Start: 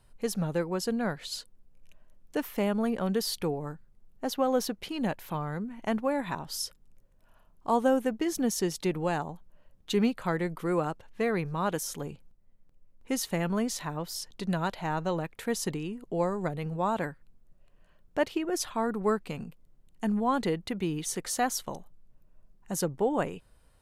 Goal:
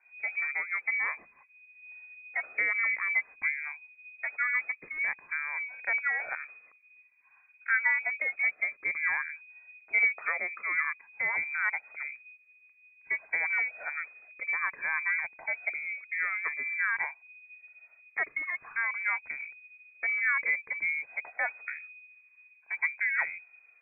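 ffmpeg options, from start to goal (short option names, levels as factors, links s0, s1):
-af "afftfilt=real='re*pow(10,9/40*sin(2*PI*(1.3*log(max(b,1)*sr/1024/100)/log(2)-(0.52)*(pts-256)/sr)))':imag='im*pow(10,9/40*sin(2*PI*(1.3*log(max(b,1)*sr/1024/100)/log(2)-(0.52)*(pts-256)/sr)))':win_size=1024:overlap=0.75,lowpass=f=2100:t=q:w=0.5098,lowpass=f=2100:t=q:w=0.6013,lowpass=f=2100:t=q:w=0.9,lowpass=f=2100:t=q:w=2.563,afreqshift=-2500,lowshelf=f=260:g=-5,volume=0.794"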